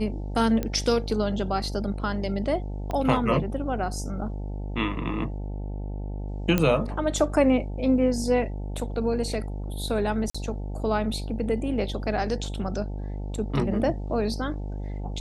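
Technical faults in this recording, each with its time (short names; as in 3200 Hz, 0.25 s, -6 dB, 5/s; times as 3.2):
buzz 50 Hz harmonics 18 -32 dBFS
0.63 pop -15 dBFS
2.91 pop -18 dBFS
6.58 pop -9 dBFS
10.3–10.35 gap 45 ms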